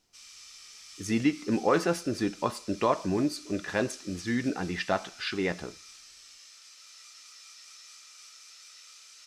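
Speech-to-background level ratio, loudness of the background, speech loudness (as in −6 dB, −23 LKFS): 18.0 dB, −47.5 LKFS, −29.5 LKFS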